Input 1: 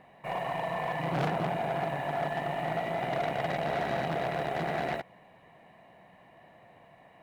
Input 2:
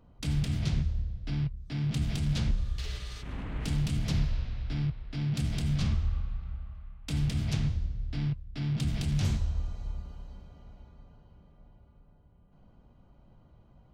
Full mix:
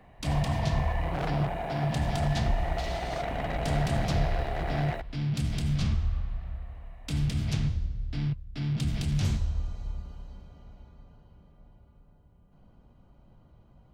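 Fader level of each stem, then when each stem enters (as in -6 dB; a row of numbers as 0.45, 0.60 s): -2.5, +1.0 dB; 0.00, 0.00 s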